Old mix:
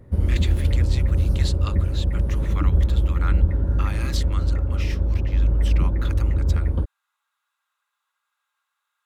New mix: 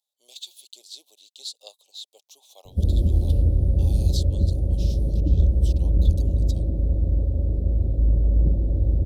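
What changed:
background: entry +2.65 s
master: add Chebyshev band-stop filter 670–3,700 Hz, order 3

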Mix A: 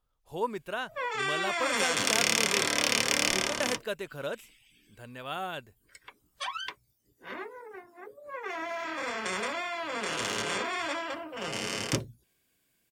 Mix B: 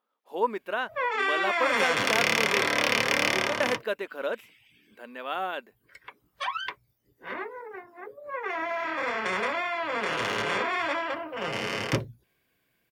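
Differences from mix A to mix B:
speech: add linear-phase brick-wall high-pass 190 Hz
master: add octave-band graphic EQ 125/500/1,000/2,000/8,000 Hz +4/+4/+4/+5/−10 dB

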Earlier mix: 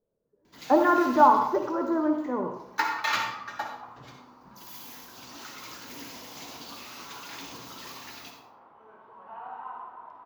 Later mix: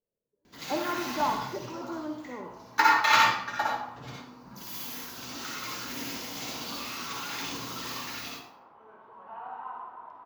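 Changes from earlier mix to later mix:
speech −11.0 dB
first sound: send +10.0 dB

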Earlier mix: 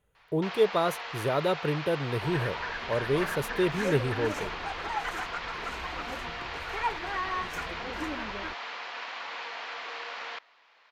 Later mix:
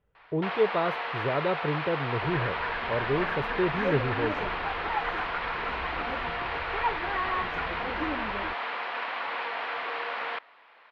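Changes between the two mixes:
first sound +8.5 dB
second sound +3.5 dB
master: add high-frequency loss of the air 360 metres

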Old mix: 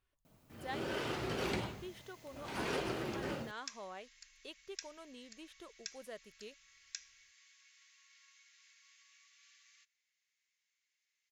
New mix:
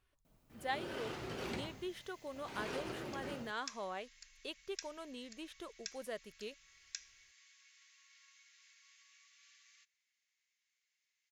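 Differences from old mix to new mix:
speech +5.0 dB
first sound −5.5 dB

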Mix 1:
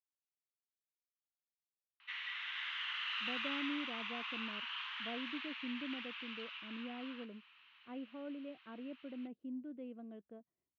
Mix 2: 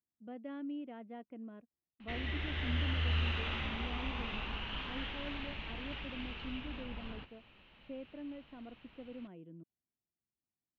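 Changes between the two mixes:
speech: entry −3.00 s
background: remove Butterworth high-pass 1,000 Hz 48 dB per octave

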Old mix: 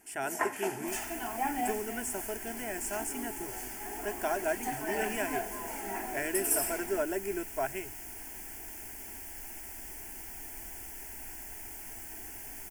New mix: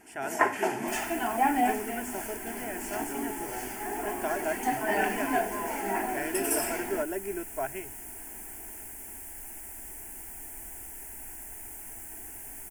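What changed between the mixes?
first sound +8.0 dB
second sound: add high shelf with overshoot 6,800 Hz +11 dB, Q 1.5
master: add high-shelf EQ 5,800 Hz −11.5 dB

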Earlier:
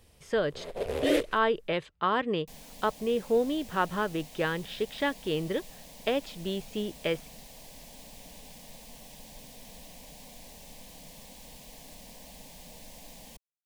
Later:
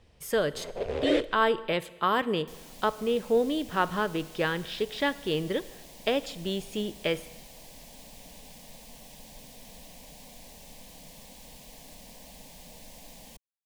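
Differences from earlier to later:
speech: remove high-frequency loss of the air 110 metres
first sound: add high-frequency loss of the air 110 metres
reverb: on, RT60 1.2 s

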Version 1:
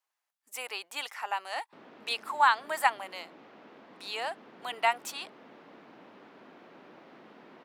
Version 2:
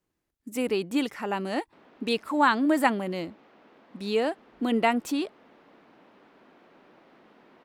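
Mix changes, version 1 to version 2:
speech: remove Chebyshev high-pass filter 800 Hz, order 3
background −3.5 dB

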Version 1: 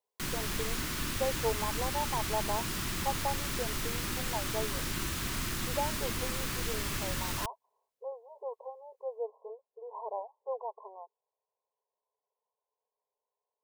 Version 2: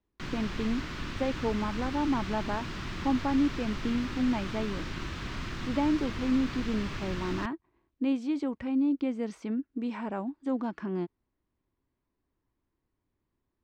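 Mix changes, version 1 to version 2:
speech: remove linear-phase brick-wall band-pass 410–1,100 Hz
master: add high-frequency loss of the air 180 metres

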